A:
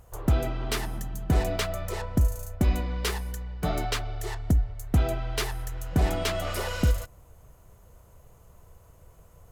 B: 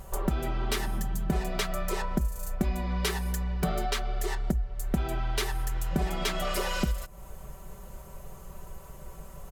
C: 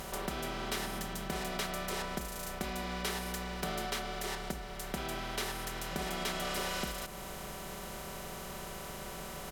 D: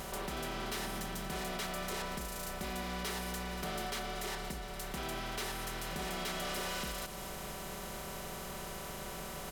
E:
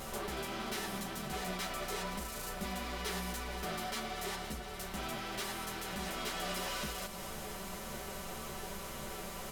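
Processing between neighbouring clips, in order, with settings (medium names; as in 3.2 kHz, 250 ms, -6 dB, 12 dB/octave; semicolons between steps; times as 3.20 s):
comb 5.2 ms, depth 91%; compression 4:1, threshold -35 dBFS, peak gain reduction 16 dB; trim +7.5 dB
spectral levelling over time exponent 0.4; bass shelf 240 Hz -11 dB; trim -8.5 dB
overload inside the chain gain 34.5 dB; feedback echo behind a high-pass 233 ms, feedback 70%, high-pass 4 kHz, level -12 dB
three-phase chorus; trim +3 dB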